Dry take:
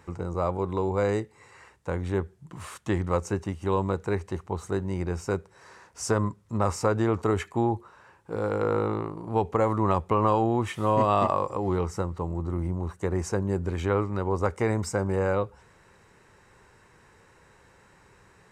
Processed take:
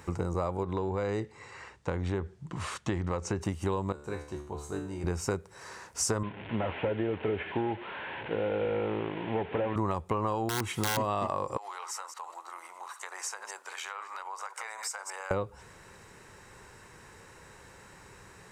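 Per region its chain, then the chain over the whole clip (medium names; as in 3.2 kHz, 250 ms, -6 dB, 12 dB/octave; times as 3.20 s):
0.63–3.41 s: low-pass 5.5 kHz + compression 2:1, threshold -28 dBFS
3.92–5.04 s: band-stop 2 kHz, Q 11 + feedback comb 73 Hz, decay 0.58 s, mix 90%
6.23–9.76 s: one-bit delta coder 16 kbps, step -36 dBFS + high-pass 240 Hz 6 dB/octave + peaking EQ 1.2 kHz -12.5 dB 0.21 oct
10.49–10.97 s: integer overflow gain 16.5 dB + comb of notches 600 Hz
11.57–15.31 s: chunks repeated in reverse 114 ms, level -11 dB + high-pass 870 Hz 24 dB/octave + compression 4:1, threshold -41 dBFS
whole clip: treble shelf 4.5 kHz +6.5 dB; compression, threshold -31 dBFS; trim +4 dB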